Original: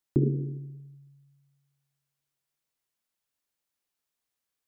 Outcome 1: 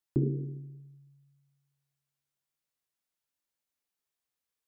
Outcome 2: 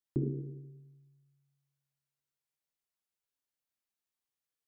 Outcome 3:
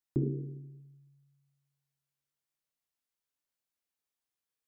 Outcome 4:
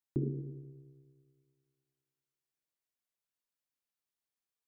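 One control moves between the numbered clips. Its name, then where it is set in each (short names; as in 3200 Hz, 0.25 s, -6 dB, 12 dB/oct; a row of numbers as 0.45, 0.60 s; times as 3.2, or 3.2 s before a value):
resonator, decay: 0.19, 0.96, 0.44, 2.1 s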